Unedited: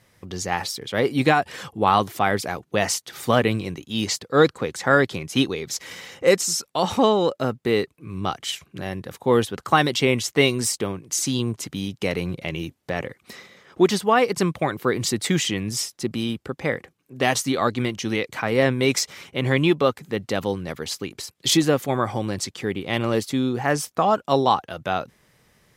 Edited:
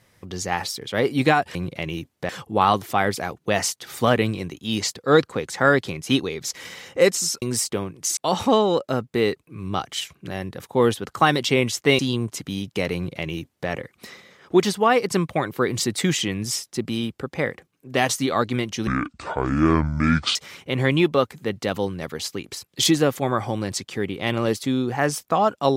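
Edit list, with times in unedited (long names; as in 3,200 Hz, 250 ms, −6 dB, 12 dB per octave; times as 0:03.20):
0:10.50–0:11.25: move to 0:06.68
0:12.21–0:12.95: duplicate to 0:01.55
0:18.13–0:19.02: play speed 60%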